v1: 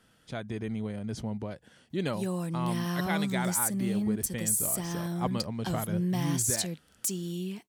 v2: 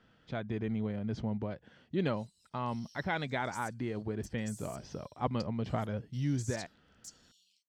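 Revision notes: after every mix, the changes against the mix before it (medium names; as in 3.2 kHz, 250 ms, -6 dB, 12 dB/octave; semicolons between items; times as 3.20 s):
background: add inverse Chebyshev high-pass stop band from 1.5 kHz, stop band 60 dB; master: add distance through air 190 m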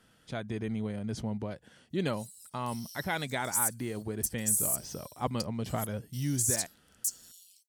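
master: remove distance through air 190 m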